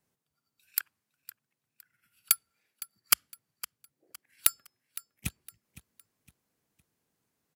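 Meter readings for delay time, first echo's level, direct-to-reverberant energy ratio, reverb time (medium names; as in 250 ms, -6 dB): 511 ms, -17.0 dB, no reverb, no reverb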